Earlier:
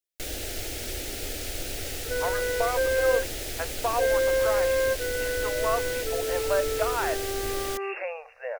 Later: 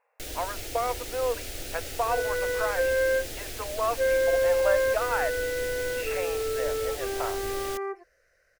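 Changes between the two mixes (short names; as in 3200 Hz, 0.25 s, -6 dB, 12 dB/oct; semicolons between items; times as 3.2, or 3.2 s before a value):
speech: entry -1.85 s; first sound -3.5 dB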